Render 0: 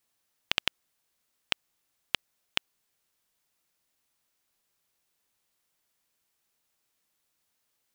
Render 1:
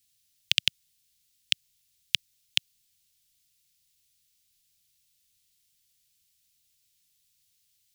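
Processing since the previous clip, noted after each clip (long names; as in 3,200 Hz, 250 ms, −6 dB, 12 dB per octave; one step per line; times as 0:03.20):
Chebyshev band-stop filter 120–3,500 Hz, order 2
level +8 dB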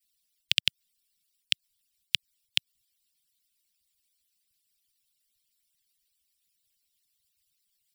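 harmonic-percussive split with one part muted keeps percussive
notch filter 6,400 Hz, Q 6.8
level −1 dB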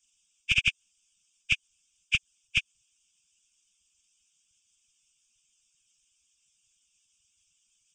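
hearing-aid frequency compression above 1,500 Hz 1.5 to 1
hard clipping −16.5 dBFS, distortion −39 dB
phaser with its sweep stopped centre 2,900 Hz, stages 8
level +7 dB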